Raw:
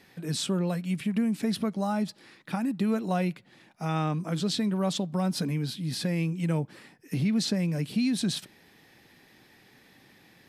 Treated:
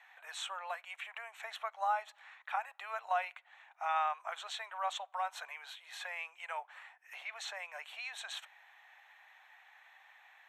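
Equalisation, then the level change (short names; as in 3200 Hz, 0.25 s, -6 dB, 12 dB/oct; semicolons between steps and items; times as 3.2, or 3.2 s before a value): running mean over 9 samples; steep high-pass 720 Hz 48 dB/oct; +2.5 dB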